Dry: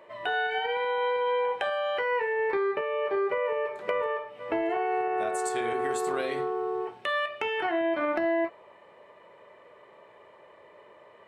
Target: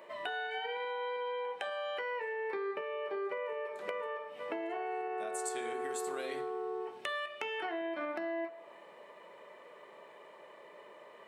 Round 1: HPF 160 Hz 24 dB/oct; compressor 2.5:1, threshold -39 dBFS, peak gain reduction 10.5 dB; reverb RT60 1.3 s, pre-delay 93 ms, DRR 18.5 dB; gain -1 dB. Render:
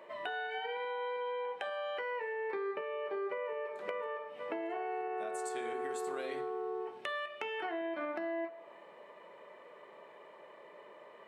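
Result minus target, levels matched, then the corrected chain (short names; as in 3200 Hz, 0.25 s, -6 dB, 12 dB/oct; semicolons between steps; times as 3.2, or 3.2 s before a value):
8000 Hz band -6.0 dB
HPF 160 Hz 24 dB/oct; compressor 2.5:1, threshold -39 dBFS, peak gain reduction 10.5 dB; high shelf 4500 Hz +8.5 dB; reverb RT60 1.3 s, pre-delay 93 ms, DRR 18.5 dB; gain -1 dB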